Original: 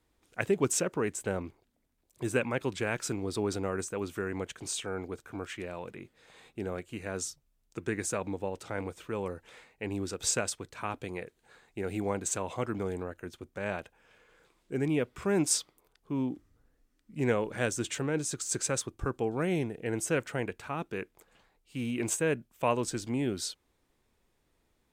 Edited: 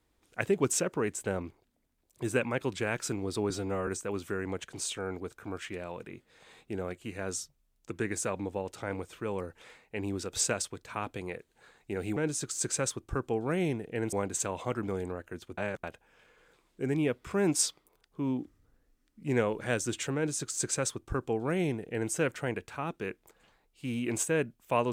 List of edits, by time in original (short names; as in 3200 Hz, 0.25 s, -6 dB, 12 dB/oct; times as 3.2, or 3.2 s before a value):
3.5–3.75 stretch 1.5×
13.49–13.75 reverse
18.07–20.03 copy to 12.04